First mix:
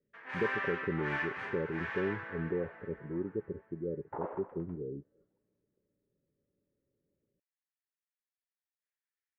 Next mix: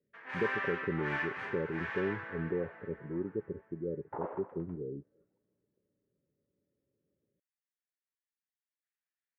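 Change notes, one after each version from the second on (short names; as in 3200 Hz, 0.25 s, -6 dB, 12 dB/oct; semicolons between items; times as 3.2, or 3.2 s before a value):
master: add HPF 63 Hz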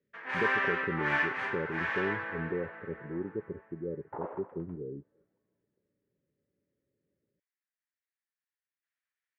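first sound +7.5 dB; reverb: off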